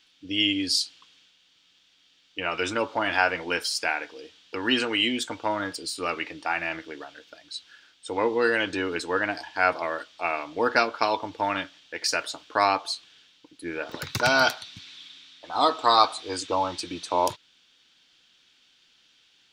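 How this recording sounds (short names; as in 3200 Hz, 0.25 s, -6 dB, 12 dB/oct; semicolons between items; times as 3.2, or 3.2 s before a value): noise floor -63 dBFS; spectral tilt -2.5 dB/oct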